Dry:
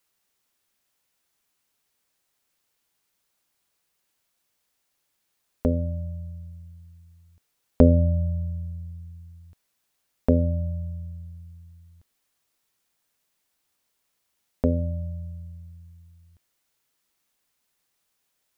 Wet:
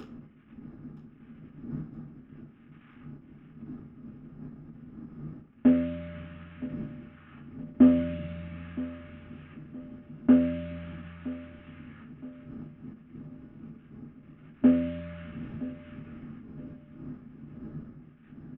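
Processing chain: CVSD coder 16 kbps; wind noise 81 Hz -42 dBFS; dynamic bell 1.3 kHz, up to -5 dB, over -48 dBFS, Q 0.81; compression 2.5:1, threshold -29 dBFS, peak gain reduction 11 dB; high-order bell 620 Hz -10.5 dB; upward compressor, threshold -34 dBFS; feedback delay 969 ms, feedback 44%, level -17 dB; reverberation RT60 0.30 s, pre-delay 3 ms, DRR -9 dB; endings held to a fixed fall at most 170 dB/s; trim -7.5 dB

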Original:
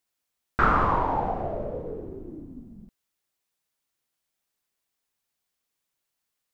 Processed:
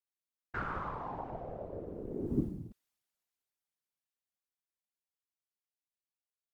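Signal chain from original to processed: Doppler pass-by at 2.39 s, 26 m/s, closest 2 m; whisper effect; trim +11 dB

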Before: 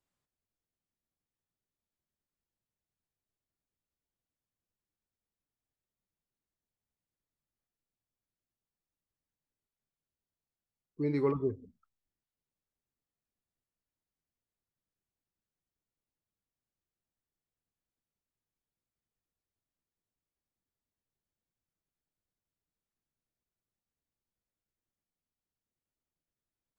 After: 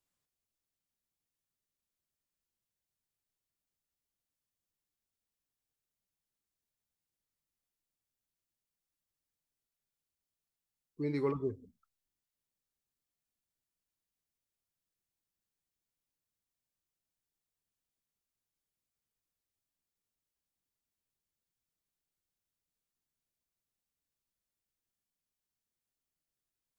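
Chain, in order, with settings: treble shelf 2.9 kHz +7.5 dB; trim -3.5 dB

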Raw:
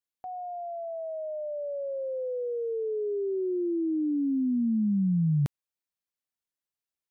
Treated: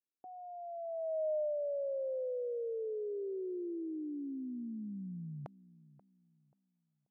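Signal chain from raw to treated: band-pass sweep 330 Hz -> 730 Hz, 0.35–1.57 s; filtered feedback delay 534 ms, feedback 31%, low-pass 920 Hz, level -18 dB; trim +1 dB

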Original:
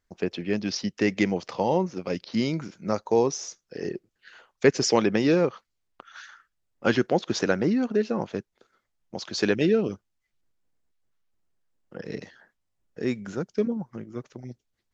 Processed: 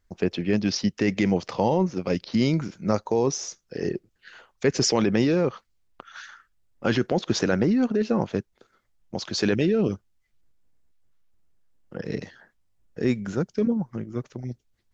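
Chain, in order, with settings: in parallel at +0.5 dB: compressor with a negative ratio -24 dBFS, ratio -0.5; on the sum: bass shelf 140 Hz +9 dB; trim -5 dB

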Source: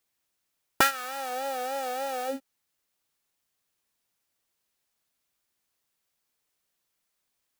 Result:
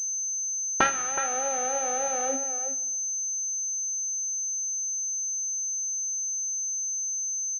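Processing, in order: speakerphone echo 370 ms, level -8 dB; two-slope reverb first 0.95 s, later 2.5 s, from -18 dB, DRR 10.5 dB; class-D stage that switches slowly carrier 6.2 kHz

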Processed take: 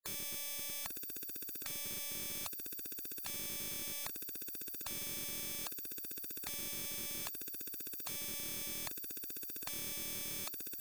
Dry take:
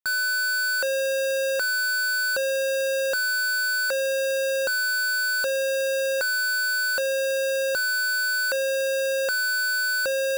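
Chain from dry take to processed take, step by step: speed mistake 25 fps video run at 24 fps; resonant low shelf 430 Hz +11 dB, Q 3; spectral gate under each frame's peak -25 dB weak; trim -1.5 dB

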